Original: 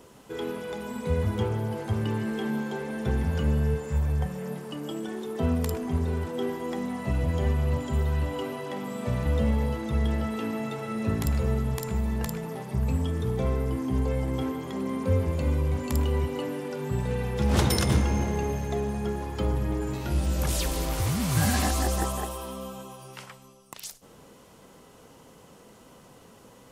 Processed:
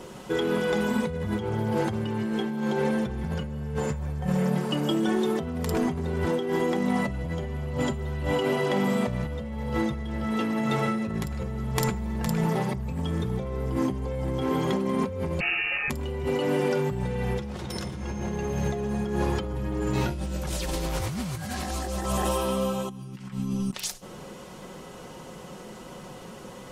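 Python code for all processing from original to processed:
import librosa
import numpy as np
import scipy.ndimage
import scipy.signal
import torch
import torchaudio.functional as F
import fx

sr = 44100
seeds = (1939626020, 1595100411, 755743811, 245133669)

y = fx.chain(x, sr, fx.highpass(hz=670.0, slope=6),
    fx.freq_invert(carrier_hz=2800), at=(15.4, 15.9))
y = fx.chain(y, sr, fx.over_compress(threshold_db=-56.0, ratio=-1.0),
    fx.low_shelf_res(hz=350.0, db=11.5, q=3.0), at=(22.89, 23.74))
y = fx.high_shelf(y, sr, hz=11000.0, db=-11.0)
y = y + 0.44 * np.pad(y, (int(5.5 * sr / 1000.0), 0))[:len(y)]
y = fx.over_compress(y, sr, threshold_db=-33.0, ratio=-1.0)
y = F.gain(torch.from_numpy(y), 5.0).numpy()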